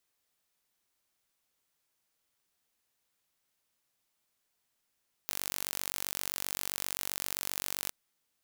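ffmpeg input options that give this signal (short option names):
-f lavfi -i "aevalsrc='0.422*eq(mod(n,926),0)':d=2.62:s=44100"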